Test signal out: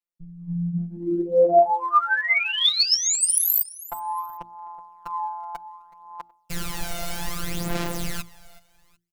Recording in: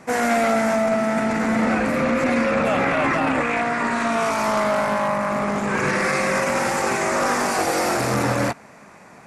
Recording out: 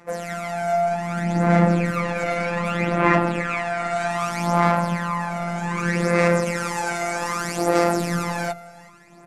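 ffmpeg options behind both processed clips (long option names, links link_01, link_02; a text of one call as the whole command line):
ffmpeg -i in.wav -af "bandreject=frequency=60:width_type=h:width=6,bandreject=frequency=120:width_type=h:width=6,bandreject=frequency=180:width_type=h:width=6,bandreject=frequency=240:width_type=h:width=6,bandreject=frequency=300:width_type=h:width=6,bandreject=frequency=360:width_type=h:width=6,afftfilt=real='hypot(re,im)*cos(PI*b)':imag='0':win_size=1024:overlap=0.75,aecho=1:1:373|746:0.1|0.03,dynaudnorm=framelen=360:gausssize=5:maxgain=11dB,adynamicequalizer=threshold=0.0178:dfrequency=200:dqfactor=1.1:tfrequency=200:tqfactor=1.1:attack=5:release=100:ratio=0.375:range=2:mode=boostabove:tftype=bell,aphaser=in_gain=1:out_gain=1:delay=1.4:decay=0.64:speed=0.64:type=sinusoidal,volume=-8dB" out.wav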